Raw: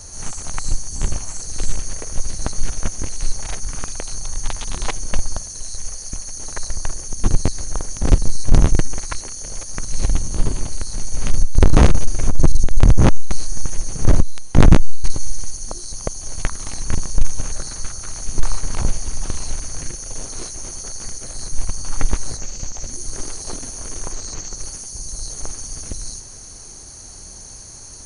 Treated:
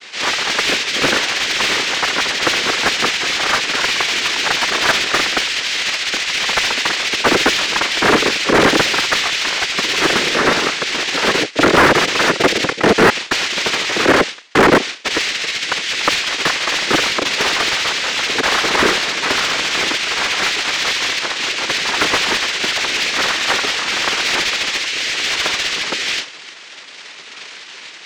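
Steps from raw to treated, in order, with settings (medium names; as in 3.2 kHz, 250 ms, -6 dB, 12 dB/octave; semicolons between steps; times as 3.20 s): noise-vocoded speech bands 3; low-pass 5 kHz 12 dB/octave; bass shelf 370 Hz -11.5 dB; expander -31 dBFS; overdrive pedal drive 33 dB, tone 2.2 kHz, clips at -4 dBFS; trim +2.5 dB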